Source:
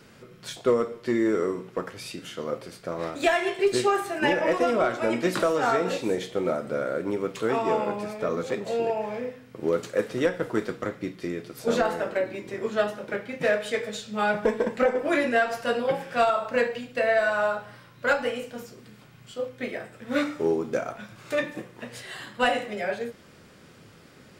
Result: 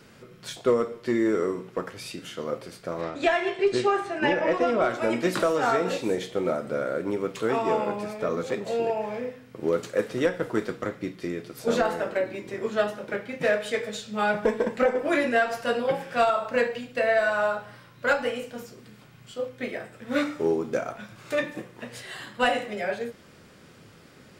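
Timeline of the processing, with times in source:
3.01–4.82 s: distance through air 86 m

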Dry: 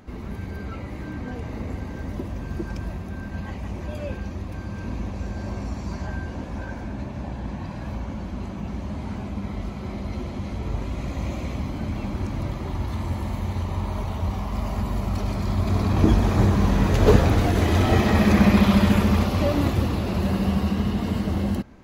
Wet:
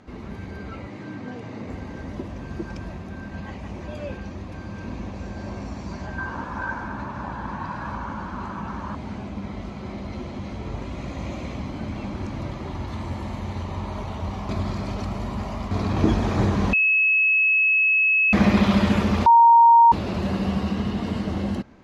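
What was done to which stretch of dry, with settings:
0.88–1.68 s: Chebyshev band-pass 100–9700 Hz, order 4
6.18–8.95 s: high-order bell 1.2 kHz +12.5 dB 1.1 oct
14.49–15.71 s: reverse
16.73–18.33 s: bleep 2.58 kHz -15.5 dBFS
19.26–19.92 s: bleep 931 Hz -9 dBFS
whole clip: low-pass 6.9 kHz 12 dB/octave; bass shelf 81 Hz -9 dB

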